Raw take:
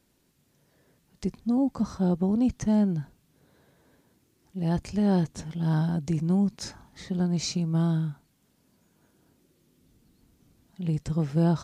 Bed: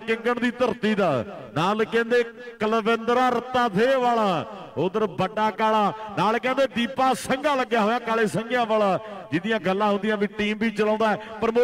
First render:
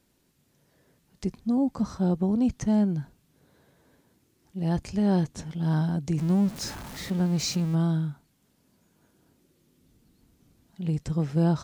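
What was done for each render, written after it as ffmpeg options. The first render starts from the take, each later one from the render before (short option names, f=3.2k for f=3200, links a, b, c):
-filter_complex "[0:a]asettb=1/sr,asplit=3[a][b][c];[a]atrim=end=6.184[d];[b]atrim=start=6.18:end=7.75,asetpts=PTS-STARTPTS,afade=t=in:d=0.004:c=qsin,afade=t=out:st=1.566:d=0.004:c=qsin,aeval=exprs='val(0)+0.5*0.0168*sgn(val(0))':c=same[e];[c]atrim=start=7.746[f];[d][e]acrossfade=d=0.004:c1=hsin:c2=qsin[g];[g][f]acrossfade=d=0.004:c1=qsin:c2=hsin"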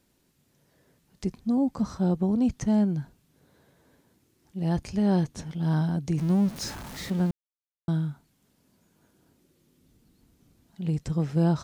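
-filter_complex "[0:a]asettb=1/sr,asplit=3[a][b][c];[a]atrim=end=4.774[d];[b]atrim=start=4.77:end=6.65,asetpts=PTS-STARTPTS,afade=t=in:d=0.004:c=qsin,afade=t=out:st=1.876:d=0.004:c=qsin,bandreject=f=7.5k:w=12[e];[c]atrim=start=6.646[f];[d][e]acrossfade=d=0.004:c1=hsin:c2=qsin[g];[g][f]acrossfade=d=0.004:c1=qsin:c2=hsin,asplit=3[h][i][j];[h]atrim=end=7.31,asetpts=PTS-STARTPTS,afade=t=out:st=7.306:d=0.004:c=hsin[k];[i]atrim=start=7.31:end=7.88,asetpts=PTS-STARTPTS,volume=0[l];[j]atrim=start=7.88,asetpts=PTS-STARTPTS,afade=t=in:d=0.004:c=hsin[m];[k][l][m]concat=n=3:v=0:a=1"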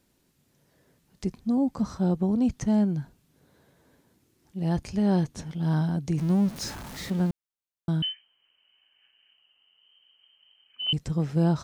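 -filter_complex "[0:a]asettb=1/sr,asplit=3[a][b][c];[a]atrim=end=8.024[d];[b]atrim=start=8.02:end=10.93,asetpts=PTS-STARTPTS,afade=t=in:d=0.004:c=qsin,afade=t=out:st=2.906:d=0.004:c=qsin,lowpass=f=2.7k:t=q:w=0.5098,lowpass=f=2.7k:t=q:w=0.6013,lowpass=f=2.7k:t=q:w=0.9,lowpass=f=2.7k:t=q:w=2.563,afreqshift=-3200[e];[c]atrim=start=10.926[f];[d][e]acrossfade=d=0.004:c1=hsin:c2=qsin[g];[g][f]acrossfade=d=0.004:c1=qsin:c2=hsin"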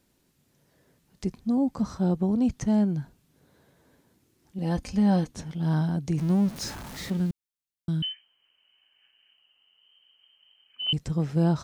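-filter_complex "[0:a]asettb=1/sr,asplit=3[a][b][c];[a]atrim=end=4.584[d];[b]atrim=start=4.58:end=5.31,asetpts=PTS-STARTPTS,afade=t=in:d=0.004:c=qsin,afade=t=out:st=0.726:d=0.004:c=qsin,aecho=1:1:3.9:0.65,atrim=end_sample=32193[e];[c]atrim=start=5.306[f];[d][e]acrossfade=d=0.004:c1=hsin:c2=qsin[g];[g][f]acrossfade=d=0.004:c1=qsin:c2=hsin,asettb=1/sr,asplit=3[h][i][j];[h]atrim=end=7.174[k];[i]atrim=start=7.17:end=8.11,asetpts=PTS-STARTPTS,afade=t=in:d=0.004:c=qsin,afade=t=out:st=0.936:d=0.004:c=qsin,equalizer=f=780:w=0.76:g=-12[l];[j]atrim=start=8.106[m];[k][l]acrossfade=d=0.004:c1=hsin:c2=qsin[n];[n][m]acrossfade=d=0.004:c1=qsin:c2=hsin"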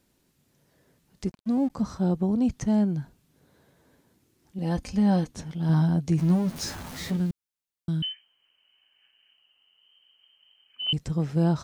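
-filter_complex "[0:a]asettb=1/sr,asplit=3[a][b][c];[a]atrim=end=1.264[d];[b]atrim=start=1.26:end=1.7,asetpts=PTS-STARTPTS,afade=t=in:d=0.004:c=qsin,afade=t=out:st=0.436:d=0.004:c=qsin,aeval=exprs='sgn(val(0))*max(abs(val(0))-0.00376,0)':c=same[e];[c]atrim=start=1.696[f];[d][e]acrossfade=d=0.004:c1=hsin:c2=qsin[g];[g][f]acrossfade=d=0.004:c1=qsin:c2=hsin,asettb=1/sr,asplit=3[h][i][j];[h]atrim=end=5.684[k];[i]atrim=start=5.68:end=7.16,asetpts=PTS-STARTPTS,afade=t=in:d=0.004:c=qsin,afade=t=out:st=1.476:d=0.004:c=qsin,asplit=2[l][m];[m]adelay=12,volume=-4.5dB[n];[l][n]amix=inputs=2:normalize=0,atrim=end_sample=65268[o];[j]atrim=start=7.156[p];[k][o]acrossfade=d=0.004:c1=hsin:c2=qsin[q];[q][p]acrossfade=d=0.004:c1=qsin:c2=hsin"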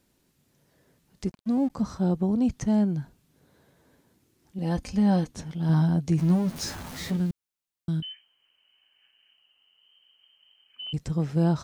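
-filter_complex "[0:a]asettb=1/sr,asplit=3[a][b][c];[a]atrim=end=8.004[d];[b]atrim=start=8:end=10.94,asetpts=PTS-STARTPTS,afade=t=in:d=0.004:c=qsin,afade=t=out:st=2.936:d=0.004:c=qsin,acompressor=threshold=-36dB:ratio=4:attack=3.2:release=140:knee=1:detection=peak[e];[c]atrim=start=10.936[f];[d][e]acrossfade=d=0.004:c1=hsin:c2=qsin[g];[g][f]acrossfade=d=0.004:c1=qsin:c2=hsin"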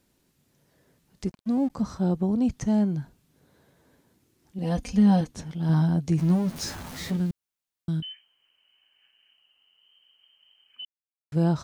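-filter_complex "[0:a]asettb=1/sr,asplit=3[a][b][c];[a]atrim=end=2.544[d];[b]atrim=start=2.54:end=2.96,asetpts=PTS-STARTPTS,afade=t=in:d=0.004:c=qsin,afade=t=out:st=0.416:d=0.004:c=qsin,bandreject=f=353.3:t=h:w=4,bandreject=f=706.6:t=h:w=4,bandreject=f=1.0599k:t=h:w=4,bandreject=f=1.4132k:t=h:w=4,bandreject=f=1.7665k:t=h:w=4,bandreject=f=2.1198k:t=h:w=4,bandreject=f=2.4731k:t=h:w=4,bandreject=f=2.8264k:t=h:w=4,bandreject=f=3.1797k:t=h:w=4,bandreject=f=3.533k:t=h:w=4,bandreject=f=3.8863k:t=h:w=4,bandreject=f=4.2396k:t=h:w=4,bandreject=f=4.5929k:t=h:w=4,bandreject=f=4.9462k:t=h:w=4,bandreject=f=5.2995k:t=h:w=4,bandreject=f=5.6528k:t=h:w=4,bandreject=f=6.0061k:t=h:w=4,bandreject=f=6.3594k:t=h:w=4,bandreject=f=6.7127k:t=h:w=4,bandreject=f=7.066k:t=h:w=4,bandreject=f=7.4193k:t=h:w=4,bandreject=f=7.7726k:t=h:w=4,bandreject=f=8.1259k:t=h:w=4,bandreject=f=8.4792k:t=h:w=4,bandreject=f=8.8325k:t=h:w=4,bandreject=f=9.1858k:t=h:w=4,bandreject=f=9.5391k:t=h:w=4,bandreject=f=9.8924k:t=h:w=4[e];[c]atrim=start=2.956[f];[d][e]acrossfade=d=0.004:c1=hsin:c2=qsin[g];[g][f]acrossfade=d=0.004:c1=qsin:c2=hsin,asettb=1/sr,asplit=3[h][i][j];[h]atrim=end=4.634[k];[i]atrim=start=4.63:end=5.21,asetpts=PTS-STARTPTS,afade=t=in:d=0.004:c=qsin,afade=t=out:st=0.576:d=0.004:c=qsin,aecho=1:1:4.2:0.65,atrim=end_sample=25578[l];[j]atrim=start=5.206[m];[k][l]acrossfade=d=0.004:c1=hsin:c2=qsin[n];[n][m]acrossfade=d=0.004:c1=qsin:c2=hsin,asplit=3[o][p][q];[o]atrim=end=10.85,asetpts=PTS-STARTPTS,afade=t=out:st=10.846:d=0.004:c=hsin[r];[p]atrim=start=10.85:end=11.32,asetpts=PTS-STARTPTS,volume=0[s];[q]atrim=start=11.32,asetpts=PTS-STARTPTS,afade=t=in:d=0.004:c=hsin[t];[r][s][t]concat=n=3:v=0:a=1"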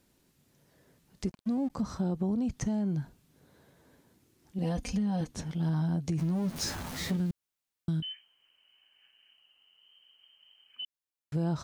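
-af "alimiter=limit=-19.5dB:level=0:latency=1:release=31,acompressor=threshold=-27dB:ratio=6"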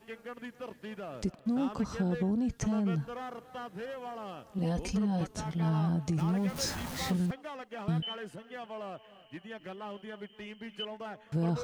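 -filter_complex "[1:a]volume=-20.5dB[a];[0:a][a]amix=inputs=2:normalize=0"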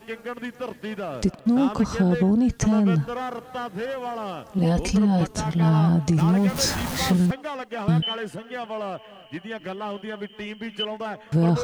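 -af "volume=10.5dB"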